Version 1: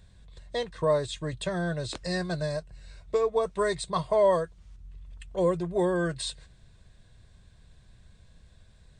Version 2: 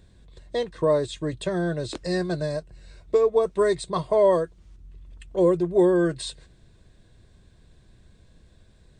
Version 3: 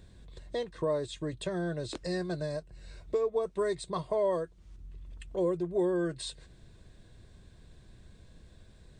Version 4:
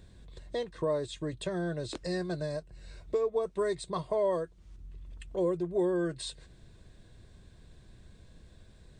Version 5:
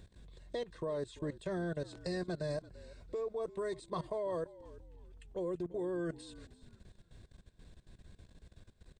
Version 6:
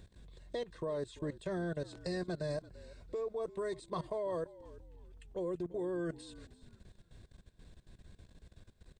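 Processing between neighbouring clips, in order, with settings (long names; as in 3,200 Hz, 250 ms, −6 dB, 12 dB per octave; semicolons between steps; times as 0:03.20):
parametric band 330 Hz +10 dB 1.1 octaves
downward compressor 1.5 to 1, threshold −44 dBFS, peak gain reduction 10.5 dB
no processing that can be heard
output level in coarse steps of 18 dB; echo with shifted repeats 340 ms, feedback 30%, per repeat −56 Hz, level −18 dB
hard clipping −27.5 dBFS, distortion −49 dB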